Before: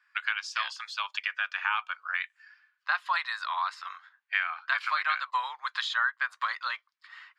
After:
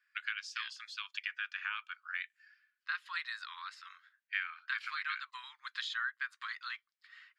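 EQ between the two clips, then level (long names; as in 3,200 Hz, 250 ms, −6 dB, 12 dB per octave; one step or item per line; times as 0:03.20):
inverse Chebyshev high-pass filter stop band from 420 Hz, stop band 60 dB
−7.0 dB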